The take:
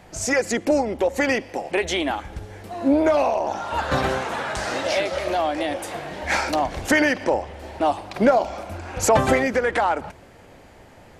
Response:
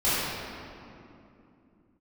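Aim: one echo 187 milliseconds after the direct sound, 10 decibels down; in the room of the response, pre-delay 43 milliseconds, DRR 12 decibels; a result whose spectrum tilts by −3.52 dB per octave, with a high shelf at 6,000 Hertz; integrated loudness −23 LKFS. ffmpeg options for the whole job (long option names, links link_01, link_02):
-filter_complex "[0:a]highshelf=frequency=6000:gain=7,aecho=1:1:187:0.316,asplit=2[link_01][link_02];[1:a]atrim=start_sample=2205,adelay=43[link_03];[link_02][link_03]afir=irnorm=-1:irlink=0,volume=-27.5dB[link_04];[link_01][link_04]amix=inputs=2:normalize=0,volume=-1.5dB"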